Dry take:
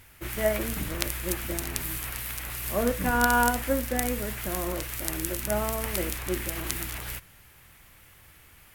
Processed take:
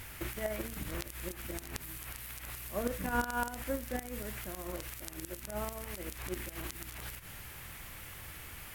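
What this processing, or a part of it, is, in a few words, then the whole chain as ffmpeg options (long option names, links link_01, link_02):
de-esser from a sidechain: -filter_complex "[0:a]asplit=2[link_01][link_02];[link_02]highpass=frequency=6200:width=0.5412,highpass=frequency=6200:width=1.3066,apad=whole_len=385507[link_03];[link_01][link_03]sidechaincompress=threshold=-51dB:ratio=8:attack=4.2:release=76,volume=7dB"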